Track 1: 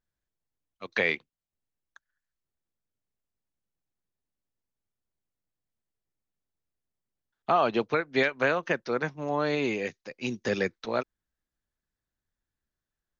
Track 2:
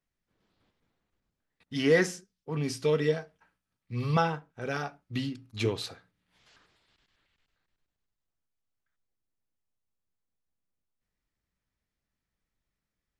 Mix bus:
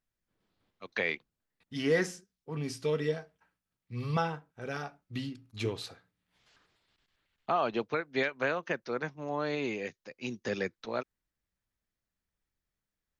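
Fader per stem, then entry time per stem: -5.5, -4.5 dB; 0.00, 0.00 s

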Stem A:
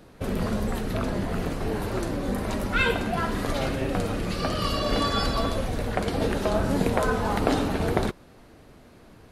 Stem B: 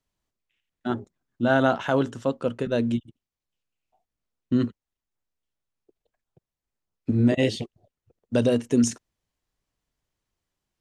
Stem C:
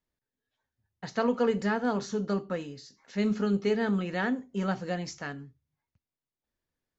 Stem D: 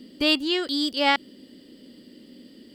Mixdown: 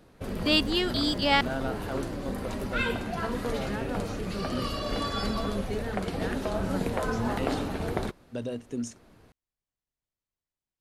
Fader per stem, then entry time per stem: -6.0, -13.0, -8.0, -2.5 dB; 0.00, 0.00, 2.05, 0.25 s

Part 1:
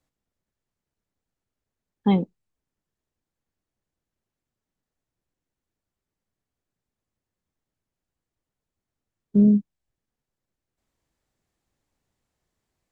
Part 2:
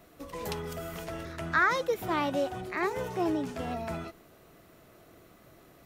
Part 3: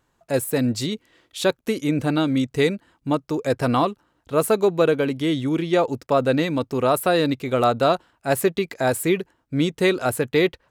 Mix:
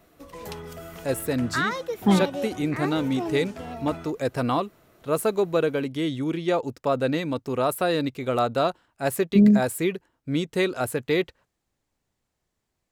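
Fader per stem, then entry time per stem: +0.5, -1.5, -4.5 dB; 0.00, 0.00, 0.75 s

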